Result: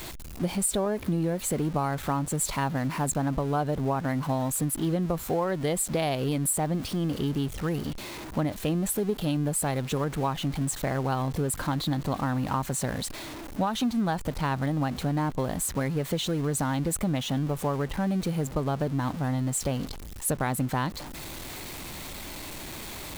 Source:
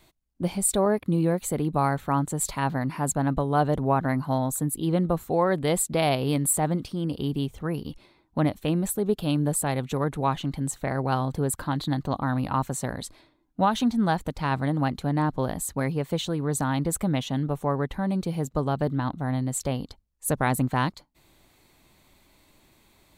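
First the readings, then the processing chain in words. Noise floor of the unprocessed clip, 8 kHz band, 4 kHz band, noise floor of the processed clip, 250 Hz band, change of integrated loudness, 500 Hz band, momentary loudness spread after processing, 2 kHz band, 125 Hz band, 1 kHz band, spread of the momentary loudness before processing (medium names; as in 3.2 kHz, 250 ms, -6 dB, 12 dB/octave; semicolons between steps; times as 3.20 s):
-63 dBFS, -0.5 dB, +1.0 dB, -40 dBFS, -2.0 dB, -2.5 dB, -2.5 dB, 10 LU, -2.0 dB, -1.5 dB, -3.5 dB, 6 LU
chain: jump at every zero crossing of -33.5 dBFS; compression, threshold -23 dBFS, peak gain reduction 7.5 dB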